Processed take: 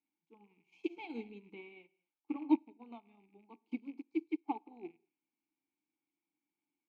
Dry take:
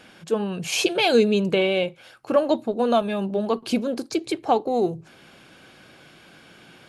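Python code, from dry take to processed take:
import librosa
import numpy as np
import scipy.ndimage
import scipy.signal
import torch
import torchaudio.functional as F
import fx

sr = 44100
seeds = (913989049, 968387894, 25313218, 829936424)

y = fx.rattle_buzz(x, sr, strikes_db=-33.0, level_db=-24.0)
y = fx.vowel_filter(y, sr, vowel='u')
y = fx.rev_gated(y, sr, seeds[0], gate_ms=240, shape='flat', drr_db=10.5)
y = fx.upward_expand(y, sr, threshold_db=-45.0, expansion=2.5)
y = y * librosa.db_to_amplitude(1.5)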